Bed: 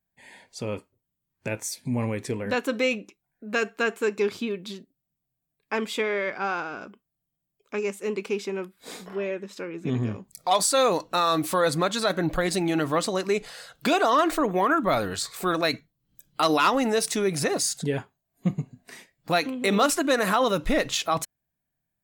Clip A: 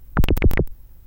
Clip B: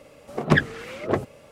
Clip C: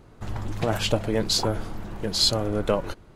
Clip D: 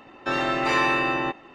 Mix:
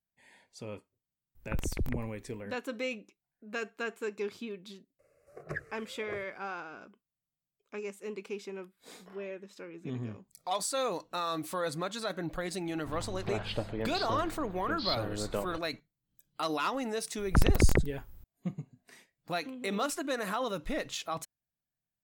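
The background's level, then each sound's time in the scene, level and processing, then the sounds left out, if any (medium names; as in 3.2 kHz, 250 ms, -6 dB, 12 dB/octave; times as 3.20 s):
bed -11 dB
1.35 s: add A -16.5 dB
4.99 s: add B -17 dB + static phaser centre 900 Hz, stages 6
12.65 s: add C -11 dB + steep low-pass 4.6 kHz 48 dB/octave
17.18 s: add A -6 dB
not used: D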